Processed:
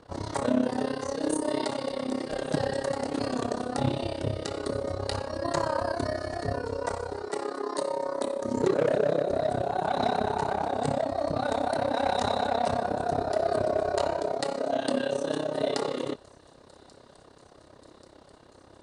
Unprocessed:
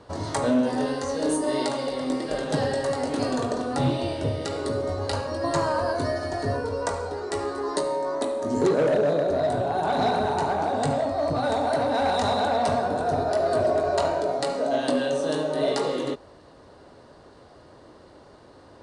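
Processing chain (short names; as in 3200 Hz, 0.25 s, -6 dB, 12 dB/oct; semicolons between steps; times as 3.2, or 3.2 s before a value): 7.29–7.9 HPF 160 Hz 24 dB/oct; AM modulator 33 Hz, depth 75%; thin delay 1.136 s, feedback 78%, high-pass 4900 Hz, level -20 dB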